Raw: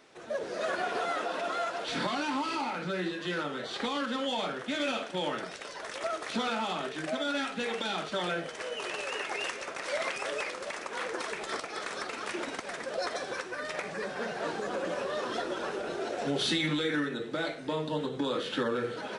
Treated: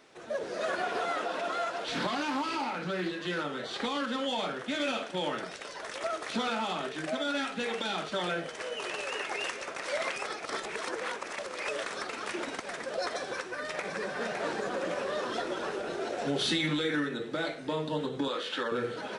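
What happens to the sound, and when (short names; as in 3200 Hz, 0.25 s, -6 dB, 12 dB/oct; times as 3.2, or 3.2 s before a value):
0.83–3.27 Doppler distortion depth 0.16 ms
10.26–11.83 reverse
13.28–14.12 echo throw 0.56 s, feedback 60%, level -5 dB
18.28–18.72 weighting filter A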